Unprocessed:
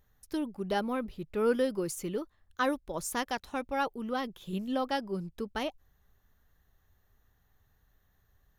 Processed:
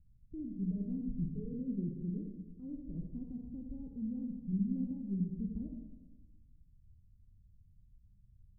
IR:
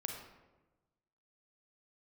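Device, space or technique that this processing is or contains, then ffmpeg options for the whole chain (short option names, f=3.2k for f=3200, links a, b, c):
club heard from the street: -filter_complex "[0:a]asettb=1/sr,asplit=3[a][b][c];[a]atrim=end=0.544[d];[b]atrim=start=0.54:end=1.54,asetpts=PTS-STARTPTS,afade=t=in:d=0.004:c=qsin,afade=t=out:st=0.996:d=0.004:c=qsin,aecho=1:1:6.8:0.99,atrim=end_sample=44100[e];[c]atrim=start=1.536[f];[d][e]acrossfade=d=0.004:c1=hsin:c2=qsin[g];[g][f]acrossfade=d=0.004:c1=qsin:c2=hsin,alimiter=limit=-23dB:level=0:latency=1,lowpass=f=200:w=0.5412,lowpass=f=200:w=1.3066[h];[1:a]atrim=start_sample=2205[i];[h][i]afir=irnorm=-1:irlink=0,volume=6.5dB"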